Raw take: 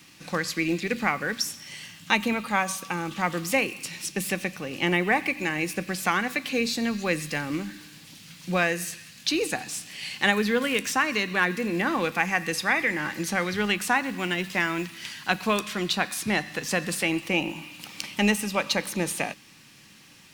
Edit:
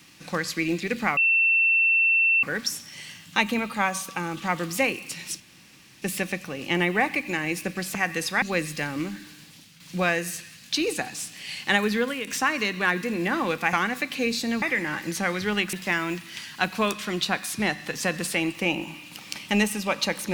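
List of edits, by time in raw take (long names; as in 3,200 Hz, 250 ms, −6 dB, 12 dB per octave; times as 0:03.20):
0:01.17: insert tone 2,690 Hz −17 dBFS 1.26 s
0:04.14: splice in room tone 0.62 s
0:06.07–0:06.96: swap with 0:12.27–0:12.74
0:07.84–0:08.34: fade out equal-power, to −9.5 dB
0:10.51–0:10.81: fade out, to −9.5 dB
0:13.85–0:14.41: remove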